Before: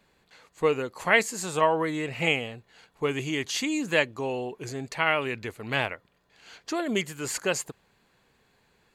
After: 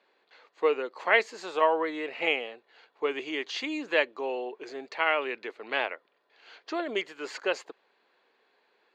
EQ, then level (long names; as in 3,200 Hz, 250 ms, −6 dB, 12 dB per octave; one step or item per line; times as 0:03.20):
high-pass filter 340 Hz 24 dB per octave
high-frequency loss of the air 220 metres
parametric band 4,200 Hz +3.5 dB 0.77 octaves
0.0 dB